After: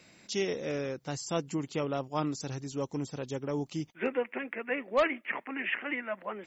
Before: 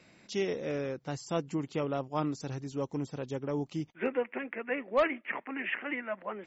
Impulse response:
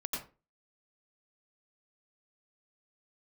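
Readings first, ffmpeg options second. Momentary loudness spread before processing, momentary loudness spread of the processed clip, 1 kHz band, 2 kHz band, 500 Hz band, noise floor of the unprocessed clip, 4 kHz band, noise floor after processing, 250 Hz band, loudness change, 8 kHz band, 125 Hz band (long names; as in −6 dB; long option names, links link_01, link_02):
7 LU, 7 LU, +0.5 dB, +1.5 dB, 0.0 dB, −63 dBFS, +4.0 dB, −62 dBFS, 0.0 dB, +0.5 dB, can't be measured, 0.0 dB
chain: -af "highshelf=frequency=4400:gain=10"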